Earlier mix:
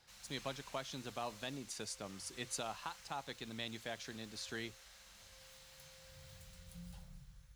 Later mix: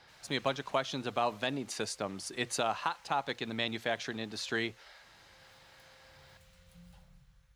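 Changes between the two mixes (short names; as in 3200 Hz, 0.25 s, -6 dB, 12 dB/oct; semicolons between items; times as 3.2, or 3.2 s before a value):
speech +12.0 dB; master: add tone controls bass -5 dB, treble -8 dB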